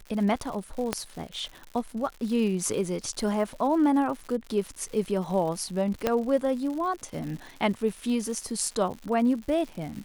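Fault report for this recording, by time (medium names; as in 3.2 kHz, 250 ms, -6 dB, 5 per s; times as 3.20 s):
crackle 170 per s -35 dBFS
0.93 s: pop -10 dBFS
6.07 s: pop -10 dBFS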